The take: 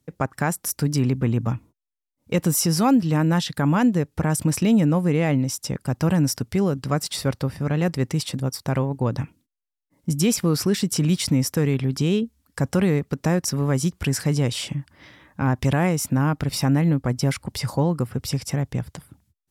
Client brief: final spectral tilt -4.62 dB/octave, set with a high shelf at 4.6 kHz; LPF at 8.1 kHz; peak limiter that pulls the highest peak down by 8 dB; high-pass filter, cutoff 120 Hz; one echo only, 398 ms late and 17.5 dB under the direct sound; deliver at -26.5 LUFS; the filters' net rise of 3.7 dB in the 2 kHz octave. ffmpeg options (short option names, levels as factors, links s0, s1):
-af "highpass=120,lowpass=8100,equalizer=f=2000:t=o:g=3.5,highshelf=f=4600:g=7,alimiter=limit=0.2:level=0:latency=1,aecho=1:1:398:0.133,volume=0.841"